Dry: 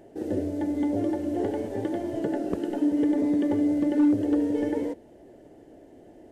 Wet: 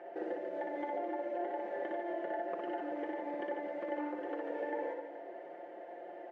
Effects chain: Chebyshev band-pass 610–2100 Hz, order 2; comb 5.7 ms, depth 85%; compression 6:1, threshold -43 dBFS, peak gain reduction 14.5 dB; on a send: reverse bouncing-ball echo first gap 60 ms, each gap 1.4×, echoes 5; on the sum: trim +5 dB

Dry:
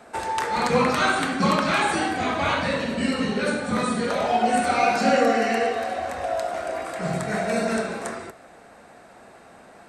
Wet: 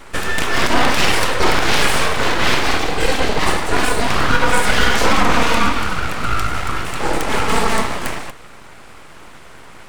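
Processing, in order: full-wave rectifier; loudness maximiser +11.5 dB; trim -1 dB

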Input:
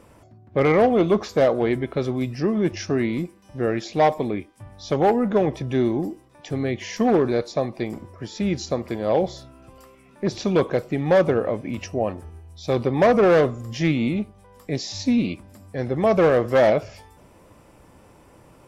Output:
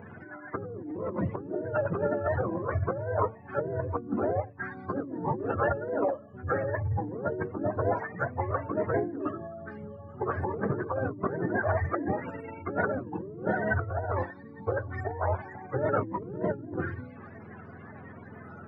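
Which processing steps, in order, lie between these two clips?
spectrum inverted on a logarithmic axis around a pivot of 470 Hz; compressor with a negative ratio -32 dBFS, ratio -1; formant shift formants -4 st; resonant high shelf 2.4 kHz -14 dB, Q 3; de-hum 111.3 Hz, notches 3

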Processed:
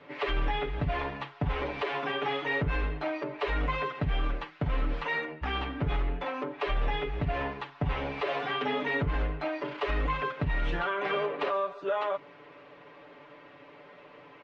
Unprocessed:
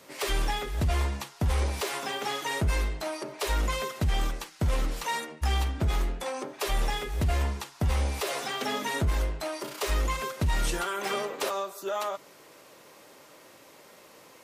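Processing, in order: low-pass 2.9 kHz 24 dB/octave; comb 6.9 ms, depth 88%; peak limiter -20.5 dBFS, peak gain reduction 6.5 dB

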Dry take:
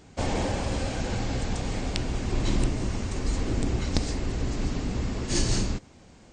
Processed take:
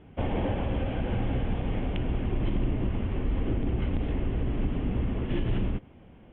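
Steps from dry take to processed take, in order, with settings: steep low-pass 3.3 kHz 96 dB/octave; peaking EQ 1.7 kHz -6 dB 2.5 oct; peak limiter -20.5 dBFS, peak gain reduction 8.5 dB; trim +1.5 dB

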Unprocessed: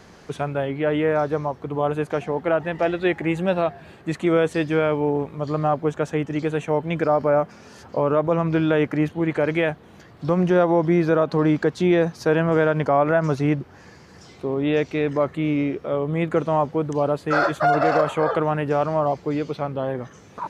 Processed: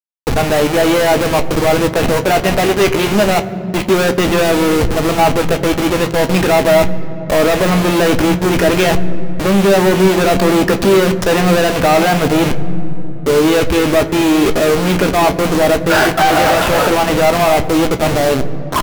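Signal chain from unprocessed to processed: send-on-delta sampling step -27.5 dBFS; dynamic bell 2.4 kHz, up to +5 dB, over -45 dBFS, Q 3.4; reverse; upward compressor, threshold -21 dBFS; reverse; waveshaping leveller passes 5; doubling 17 ms -10.5 dB; on a send at -9.5 dB: reverberation RT60 3.5 s, pre-delay 3 ms; on the sum: speed mistake 44.1 kHz file played as 48 kHz; trim -1 dB

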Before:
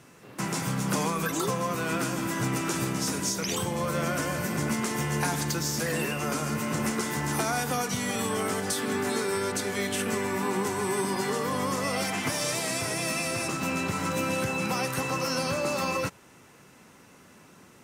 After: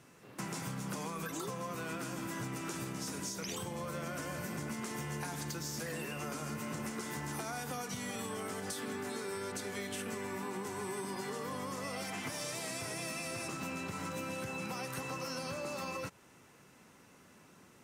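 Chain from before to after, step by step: compression, threshold -30 dBFS, peak gain reduction 7.5 dB; trim -6.5 dB

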